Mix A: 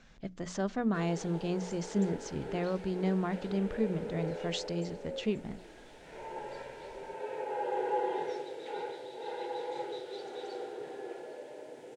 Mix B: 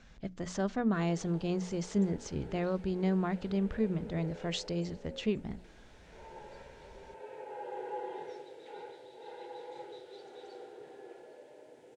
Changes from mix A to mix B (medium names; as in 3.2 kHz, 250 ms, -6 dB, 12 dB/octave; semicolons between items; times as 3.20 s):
background -8.0 dB; master: add peaking EQ 64 Hz +8 dB 1.2 oct